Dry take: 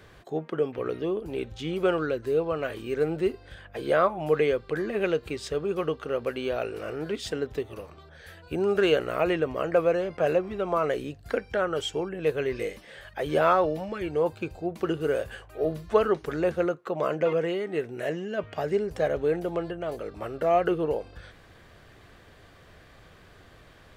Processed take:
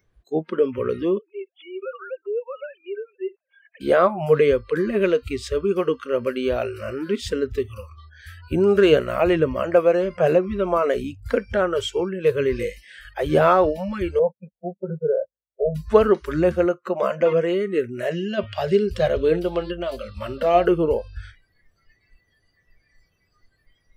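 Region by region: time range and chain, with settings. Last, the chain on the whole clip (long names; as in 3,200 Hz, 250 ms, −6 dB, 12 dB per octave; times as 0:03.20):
0:01.18–0:03.81: three sine waves on the formant tracks + high-pass filter 470 Hz + downward compressor 2 to 1, threshold −36 dBFS
0:14.19–0:15.75: noise gate −34 dBFS, range −33 dB + inverse Chebyshev low-pass filter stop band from 3,600 Hz, stop band 50 dB + phaser with its sweep stopped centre 320 Hz, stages 6
0:18.11–0:20.66: flat-topped bell 3,700 Hz +8 dB 1.1 octaves + hum removal 112.5 Hz, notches 8
whole clip: noise reduction from a noise print of the clip's start 27 dB; low-shelf EQ 360 Hz +9 dB; level +3.5 dB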